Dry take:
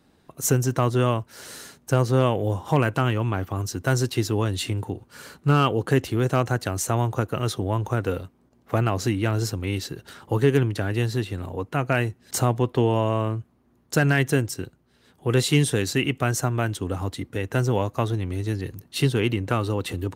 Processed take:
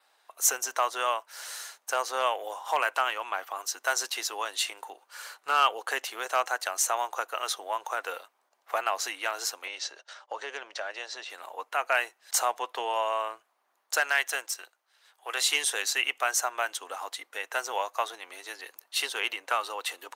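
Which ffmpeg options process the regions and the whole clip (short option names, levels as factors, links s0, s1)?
-filter_complex "[0:a]asettb=1/sr,asplit=3[s0][s1][s2];[s0]atrim=end=9.674[s3];[s1]atrim=start=9.67:end=11.3,asetpts=PTS-STARTPTS,afade=t=in:d=0.004:c=qsin,afade=t=out:st=1.626:d=0.004:c=qsin,agate=range=0.0224:threshold=0.00891:ratio=3:release=100:detection=peak,acompressor=threshold=0.0224:ratio=1.5:attack=3.2:release=140:knee=1:detection=peak,highpass=150,equalizer=f=160:t=q:w=4:g=8,equalizer=f=590:t=q:w=4:g=9,equalizer=f=5600:t=q:w=4:g=4,lowpass=f=7000:w=0.5412,lowpass=f=7000:w=1.3066[s4];[s2]atrim=start=11.296[s5];[s3][s4]acrossfade=d=0.004:c1=hsin:c2=qsin[s6];[s6][s5]acrossfade=d=0.004:c1=qsin:c2=hsin,asettb=1/sr,asplit=3[s7][s8][s9];[s7]atrim=end=14.004[s10];[s8]atrim=start=14:end=15.41,asetpts=PTS-STARTPTS,afade=t=in:d=0.004:c=qsin,afade=t=out:st=1.406:d=0.004:c=qsin,aeval=exprs='if(lt(val(0),0),0.708*val(0),val(0))':c=same,lowshelf=f=460:g=-6.5[s11];[s9]atrim=start=15.406[s12];[s10][s11]acrossfade=d=0.004:c1=hsin:c2=qsin[s13];[s13][s12]acrossfade=d=0.004:c1=qsin:c2=hsin,highpass=f=700:w=0.5412,highpass=f=700:w=1.3066,adynamicequalizer=threshold=0.00355:dfrequency=6200:dqfactor=6:tfrequency=6200:tqfactor=6:attack=5:release=100:ratio=0.375:range=2:mode=boostabove:tftype=bell,volume=1.12"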